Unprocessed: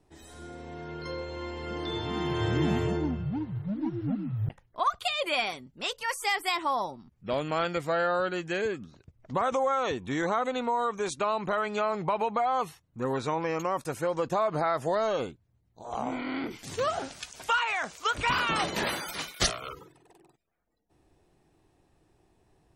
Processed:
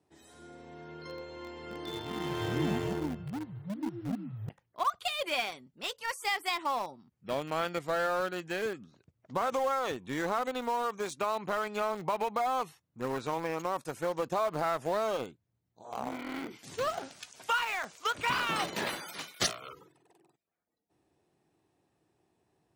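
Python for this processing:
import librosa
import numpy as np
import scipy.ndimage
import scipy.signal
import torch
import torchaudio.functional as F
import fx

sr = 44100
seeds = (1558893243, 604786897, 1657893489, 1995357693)

p1 = scipy.signal.sosfilt(scipy.signal.butter(2, 120.0, 'highpass', fs=sr, output='sos'), x)
p2 = np.where(np.abs(p1) >= 10.0 ** (-27.0 / 20.0), p1, 0.0)
p3 = p1 + (p2 * 10.0 ** (-6.0 / 20.0))
y = p3 * 10.0 ** (-6.5 / 20.0)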